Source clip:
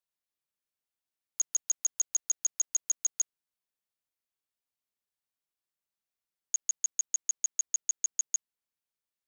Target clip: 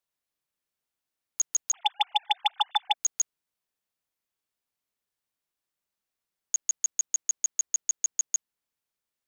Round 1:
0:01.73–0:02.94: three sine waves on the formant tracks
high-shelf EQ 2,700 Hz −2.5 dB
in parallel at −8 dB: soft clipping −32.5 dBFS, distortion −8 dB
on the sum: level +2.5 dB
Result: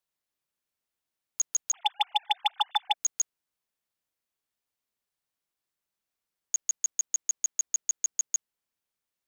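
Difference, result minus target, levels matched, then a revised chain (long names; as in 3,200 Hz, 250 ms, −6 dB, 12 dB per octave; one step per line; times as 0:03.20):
soft clipping: distortion +8 dB
0:01.73–0:02.94: three sine waves on the formant tracks
high-shelf EQ 2,700 Hz −2.5 dB
in parallel at −8 dB: soft clipping −22 dBFS, distortion −17 dB
on the sum: level +2.5 dB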